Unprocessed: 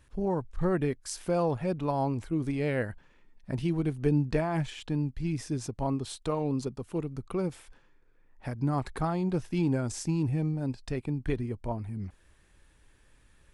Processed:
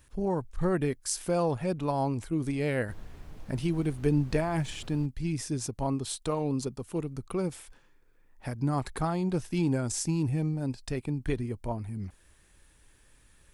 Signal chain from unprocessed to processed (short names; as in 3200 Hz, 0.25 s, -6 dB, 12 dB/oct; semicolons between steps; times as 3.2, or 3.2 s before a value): high shelf 6100 Hz +10.5 dB; 2.87–5.05 added noise brown -43 dBFS